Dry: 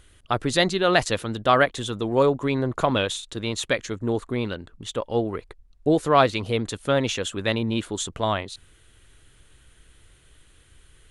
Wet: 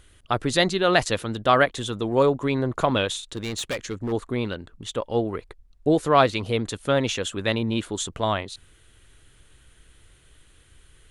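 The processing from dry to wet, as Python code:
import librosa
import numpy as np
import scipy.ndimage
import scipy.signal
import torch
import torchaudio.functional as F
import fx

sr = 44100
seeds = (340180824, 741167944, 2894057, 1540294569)

y = fx.overload_stage(x, sr, gain_db=24.0, at=(3.31, 4.11), fade=0.02)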